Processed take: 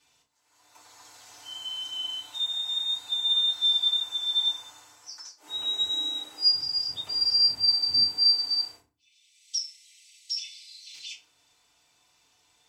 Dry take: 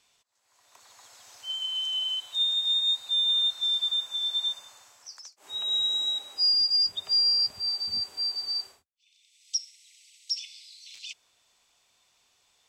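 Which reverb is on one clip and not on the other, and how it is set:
feedback delay network reverb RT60 0.34 s, low-frequency decay 1.6×, high-frequency decay 0.75×, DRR −7 dB
level −5.5 dB

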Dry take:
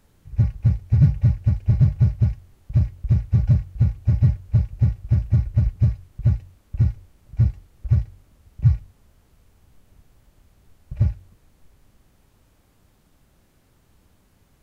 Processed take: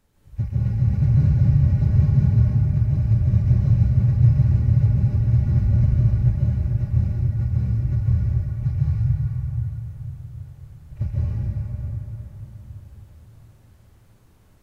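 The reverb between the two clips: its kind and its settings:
dense smooth reverb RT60 4.7 s, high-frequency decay 0.55×, pre-delay 115 ms, DRR −8.5 dB
level −7 dB

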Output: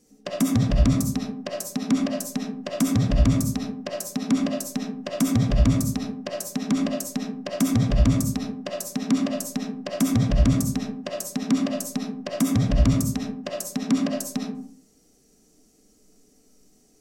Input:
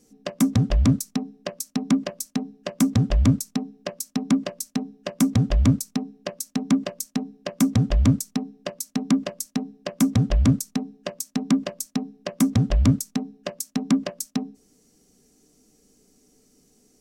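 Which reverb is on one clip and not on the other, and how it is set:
comb and all-pass reverb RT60 0.56 s, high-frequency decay 0.45×, pre-delay 25 ms, DRR −1 dB
level −2.5 dB

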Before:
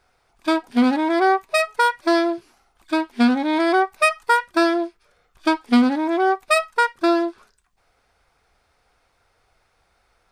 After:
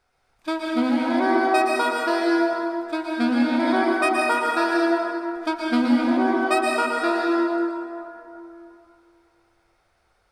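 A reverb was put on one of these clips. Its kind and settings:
dense smooth reverb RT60 2.8 s, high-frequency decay 0.5×, pre-delay 105 ms, DRR −3.5 dB
level −7 dB

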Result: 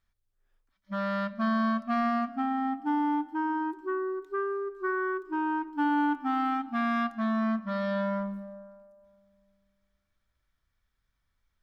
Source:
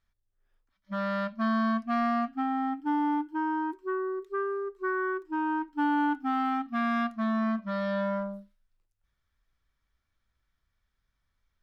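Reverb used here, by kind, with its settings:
comb and all-pass reverb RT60 2.1 s, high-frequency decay 0.35×, pre-delay 100 ms, DRR 19.5 dB

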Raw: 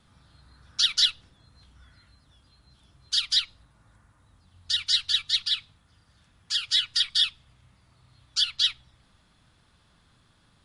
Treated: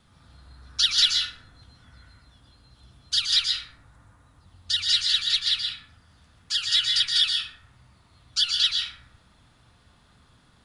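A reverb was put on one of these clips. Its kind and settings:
dense smooth reverb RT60 0.83 s, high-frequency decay 0.4×, pre-delay 110 ms, DRR 0 dB
level +1 dB

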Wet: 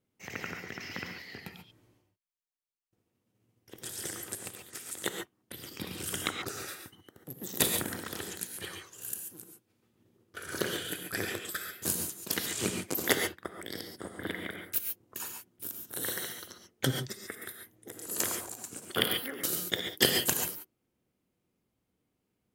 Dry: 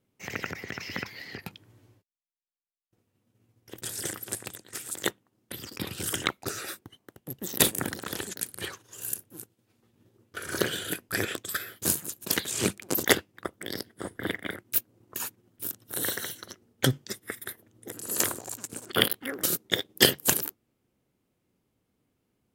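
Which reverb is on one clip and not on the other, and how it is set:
reverb whose tail is shaped and stops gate 160 ms rising, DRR 3.5 dB
level −5.5 dB

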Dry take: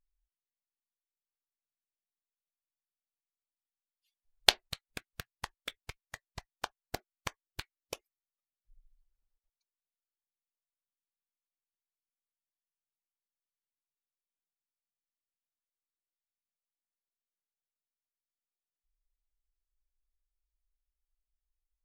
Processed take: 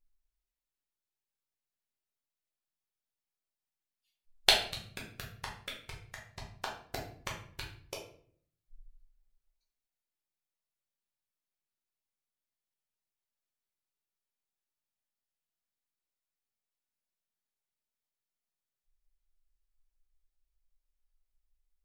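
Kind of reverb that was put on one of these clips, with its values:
rectangular room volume 73 cubic metres, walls mixed, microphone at 1 metre
level −3.5 dB

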